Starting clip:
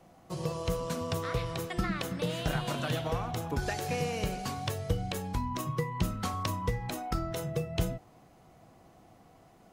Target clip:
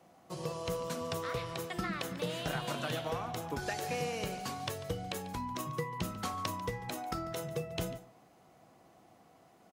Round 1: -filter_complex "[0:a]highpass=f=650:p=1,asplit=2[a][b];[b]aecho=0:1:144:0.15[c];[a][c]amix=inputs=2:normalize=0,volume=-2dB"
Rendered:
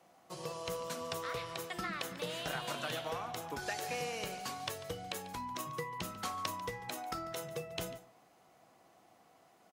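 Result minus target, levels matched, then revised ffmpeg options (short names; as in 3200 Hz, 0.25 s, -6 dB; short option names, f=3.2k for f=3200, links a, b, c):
250 Hz band -4.5 dB
-filter_complex "[0:a]highpass=f=220:p=1,asplit=2[a][b];[b]aecho=0:1:144:0.15[c];[a][c]amix=inputs=2:normalize=0,volume=-2dB"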